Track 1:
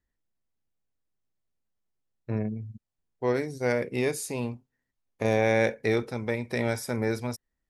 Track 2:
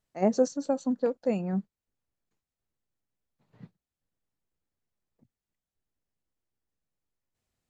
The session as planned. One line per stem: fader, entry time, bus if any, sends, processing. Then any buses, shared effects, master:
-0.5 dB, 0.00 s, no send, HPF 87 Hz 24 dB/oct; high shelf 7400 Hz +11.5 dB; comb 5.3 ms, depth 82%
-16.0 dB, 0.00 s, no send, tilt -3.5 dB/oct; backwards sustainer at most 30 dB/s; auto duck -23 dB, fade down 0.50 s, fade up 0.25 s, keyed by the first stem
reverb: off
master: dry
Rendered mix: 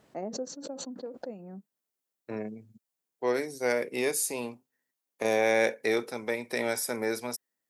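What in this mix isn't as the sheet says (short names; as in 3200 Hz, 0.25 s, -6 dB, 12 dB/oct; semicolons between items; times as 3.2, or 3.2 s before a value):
stem 1: missing comb 5.3 ms, depth 82%; master: extra HPF 300 Hz 12 dB/oct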